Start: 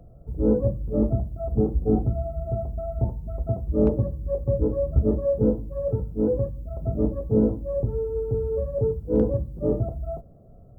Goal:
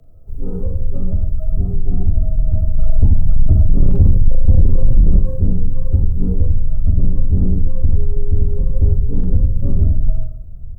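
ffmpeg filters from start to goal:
ffmpeg -i in.wav -filter_complex "[0:a]equalizer=frequency=490:width=0.31:gain=-10.5,aecho=1:1:40|86|138.9|199.7|269.7:0.631|0.398|0.251|0.158|0.1,alimiter=limit=-20dB:level=0:latency=1:release=78,asubboost=boost=7.5:cutoff=180,acontrast=70,bandreject=frequency=71.52:width_type=h:width=4,bandreject=frequency=143.04:width_type=h:width=4,bandreject=frequency=214.56:width_type=h:width=4,bandreject=frequency=286.08:width_type=h:width=4,bandreject=frequency=357.6:width_type=h:width=4,bandreject=frequency=429.12:width_type=h:width=4,bandreject=frequency=500.64:width_type=h:width=4,bandreject=frequency=572.16:width_type=h:width=4,bandreject=frequency=643.68:width_type=h:width=4,bandreject=frequency=715.2:width_type=h:width=4,bandreject=frequency=786.72:width_type=h:width=4,bandreject=frequency=858.24:width_type=h:width=4,bandreject=frequency=929.76:width_type=h:width=4,bandreject=frequency=1001.28:width_type=h:width=4,bandreject=frequency=1072.8:width_type=h:width=4,bandreject=frequency=1144.32:width_type=h:width=4,bandreject=frequency=1215.84:width_type=h:width=4,bandreject=frequency=1287.36:width_type=h:width=4,bandreject=frequency=1358.88:width_type=h:width=4,bandreject=frequency=1430.4:width_type=h:width=4,bandreject=frequency=1501.92:width_type=h:width=4,bandreject=frequency=1573.44:width_type=h:width=4,bandreject=frequency=1644.96:width_type=h:width=4,bandreject=frequency=1716.48:width_type=h:width=4,bandreject=frequency=1788:width_type=h:width=4,bandreject=frequency=1859.52:width_type=h:width=4,bandreject=frequency=1931.04:width_type=h:width=4,bandreject=frequency=2002.56:width_type=h:width=4,bandreject=frequency=2074.08:width_type=h:width=4,bandreject=frequency=2145.6:width_type=h:width=4,bandreject=frequency=2217.12:width_type=h:width=4,bandreject=frequency=2288.64:width_type=h:width=4,bandreject=frequency=2360.16:width_type=h:width=4,bandreject=frequency=2431.68:width_type=h:width=4,bandreject=frequency=2503.2:width_type=h:width=4,bandreject=frequency=2574.72:width_type=h:width=4,afreqshift=-35,asettb=1/sr,asplit=3[link_01][link_02][link_03];[link_01]atrim=end=2.794[link_04];[link_02]atrim=start=2.79:end=5.19,asetpts=PTS-STARTPTS,afade=type=in:duration=0.004:curve=qsin,afade=type=out:start_time=2.396:duration=0.004:curve=qsin,acontrast=88[link_05];[link_03]atrim=start=5.186[link_06];[link_04][link_05]acrossfade=duration=0.004:curve1=hsin:curve2=qsin[link_07];[link_07][link_06]acrossfade=duration=0.004:curve1=qsin:curve2=hsin,volume=-1dB" out.wav

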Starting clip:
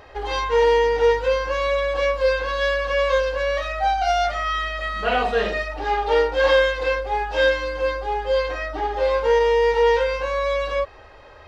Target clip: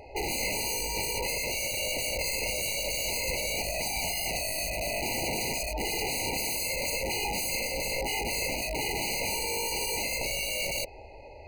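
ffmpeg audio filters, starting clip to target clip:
ffmpeg -i in.wav -filter_complex "[0:a]asettb=1/sr,asplit=3[link_01][link_02][link_03];[link_01]atrim=end=4.694[link_04];[link_02]atrim=start=4.69:end=5.41,asetpts=PTS-STARTPTS,afade=type=in:duration=0.004:curve=qsin,afade=type=out:start_time=0.716:duration=0.004:curve=qsin,adynamicsmooth=sensitivity=5:basefreq=520[link_05];[link_03]atrim=start=5.406[link_06];[link_04][link_05]acrossfade=duration=0.004:curve1=hsin:curve2=qsin[link_07];[link_07][link_06]acrossfade=duration=0.004:curve1=qsin:curve2=hsin,aeval=exprs='(mod(15*val(0)+1,2)-1)/15':channel_layout=same,afftfilt=real='re*eq(mod(floor(b*sr/1024/990),2),0)':imag='im*eq(mod(floor(b*sr/1024/990),2),0)':win_size=1024:overlap=0.75" out.wav

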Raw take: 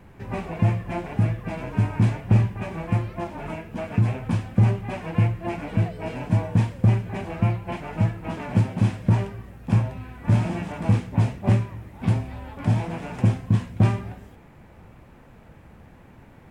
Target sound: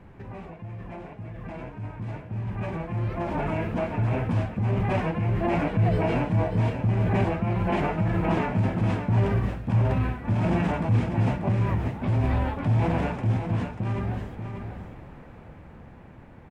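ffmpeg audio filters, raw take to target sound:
ffmpeg -i in.wav -af "lowpass=frequency=2400:poles=1,areverse,acompressor=threshold=-29dB:ratio=10,areverse,alimiter=level_in=7.5dB:limit=-24dB:level=0:latency=1:release=34,volume=-7.5dB,dynaudnorm=framelen=380:gausssize=17:maxgain=15dB,aecho=1:1:589:0.422" out.wav

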